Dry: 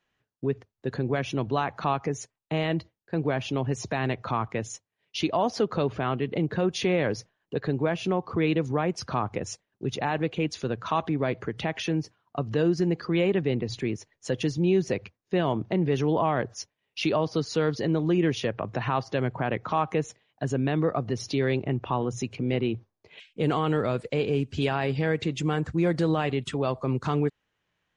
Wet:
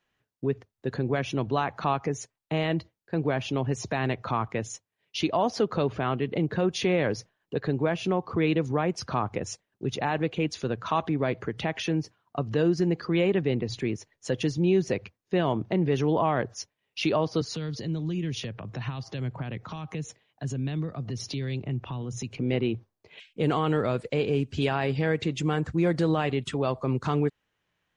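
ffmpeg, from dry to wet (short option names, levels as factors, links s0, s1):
-filter_complex "[0:a]asettb=1/sr,asplit=3[s0][s1][s2];[s0]atrim=end=17.414[s3];[s1]atrim=start=17.41:end=22.37,asetpts=PTS-STARTPTS,afade=t=in:d=0.004:c=qsin,afade=t=out:st=4.956:d=0.004:c=qsin,acrossover=split=210|3000[s4][s5][s6];[s5]acompressor=threshold=0.0126:ratio=10:attack=3.2:release=140:knee=2.83:detection=peak[s7];[s4][s7][s6]amix=inputs=3:normalize=0[s8];[s2]atrim=start=22.366[s9];[s3][s8]acrossfade=d=0.004:c1=hsin:c2=qsin[s10];[s10][s9]acrossfade=d=0.004:c1=qsin:c2=hsin"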